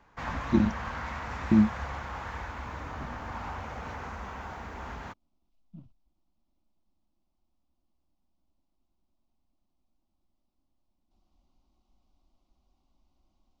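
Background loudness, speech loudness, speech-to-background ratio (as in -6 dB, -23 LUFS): -38.0 LUFS, -26.0 LUFS, 12.0 dB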